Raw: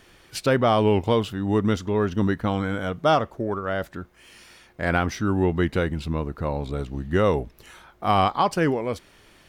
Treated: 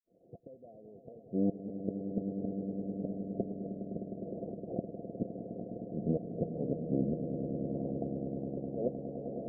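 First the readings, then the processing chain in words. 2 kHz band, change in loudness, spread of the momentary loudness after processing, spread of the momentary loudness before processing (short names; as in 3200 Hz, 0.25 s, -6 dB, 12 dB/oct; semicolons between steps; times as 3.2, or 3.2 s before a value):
under -40 dB, -13.5 dB, 12 LU, 10 LU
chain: half-wave gain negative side -12 dB; recorder AGC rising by 28 dB/s; expander -41 dBFS; HPF 230 Hz 12 dB/oct; in parallel at +1 dB: compressor 8:1, threshold -37 dBFS, peak gain reduction 19 dB; on the sum: flipped gate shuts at -15 dBFS, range -27 dB; bit-crush 11-bit; rippled Chebyshev low-pass 710 Hz, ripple 6 dB; swelling echo 0.103 s, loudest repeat 8, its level -11 dB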